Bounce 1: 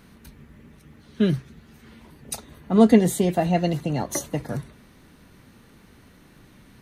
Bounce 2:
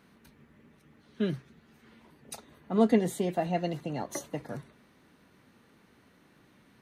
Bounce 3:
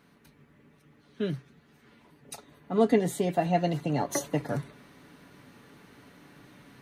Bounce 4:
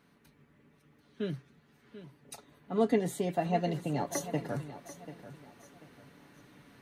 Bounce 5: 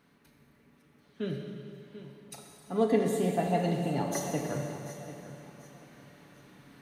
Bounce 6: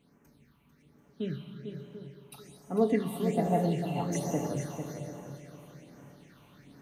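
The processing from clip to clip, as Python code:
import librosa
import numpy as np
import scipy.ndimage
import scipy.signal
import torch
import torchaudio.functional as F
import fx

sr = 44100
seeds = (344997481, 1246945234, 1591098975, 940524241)

y1 = fx.highpass(x, sr, hz=240.0, slope=6)
y1 = fx.high_shelf(y1, sr, hz=4400.0, db=-7.0)
y1 = F.gain(torch.from_numpy(y1), -6.0).numpy()
y2 = y1 + 0.35 * np.pad(y1, (int(7.0 * sr / 1000.0), 0))[:len(y1)]
y2 = fx.rider(y2, sr, range_db=4, speed_s=2.0)
y2 = F.gain(torch.from_numpy(y2), 3.5).numpy()
y3 = fx.echo_feedback(y2, sr, ms=739, feedback_pct=31, wet_db=-14.0)
y3 = F.gain(torch.from_numpy(y3), -4.5).numpy()
y4 = fx.rev_schroeder(y3, sr, rt60_s=2.4, comb_ms=29, drr_db=2.0)
y5 = fx.phaser_stages(y4, sr, stages=6, low_hz=450.0, high_hz=3900.0, hz=1.2, feedback_pct=35)
y5 = y5 + 10.0 ** (-8.5 / 20.0) * np.pad(y5, (int(447 * sr / 1000.0), 0))[:len(y5)]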